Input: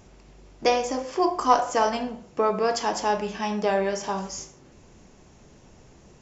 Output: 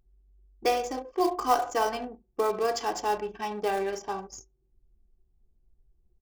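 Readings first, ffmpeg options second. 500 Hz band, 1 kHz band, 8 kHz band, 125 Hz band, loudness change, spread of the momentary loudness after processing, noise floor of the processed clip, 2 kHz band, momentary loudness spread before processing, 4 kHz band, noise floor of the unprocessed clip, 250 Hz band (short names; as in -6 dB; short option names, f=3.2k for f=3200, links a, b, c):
-4.0 dB, -4.0 dB, n/a, under -10 dB, -4.0 dB, 11 LU, -70 dBFS, -4.5 dB, 10 LU, -5.0 dB, -53 dBFS, -6.0 dB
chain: -af "acrusher=bits=4:mode=log:mix=0:aa=0.000001,anlmdn=10,aecho=1:1:2.6:0.52,volume=-5.5dB"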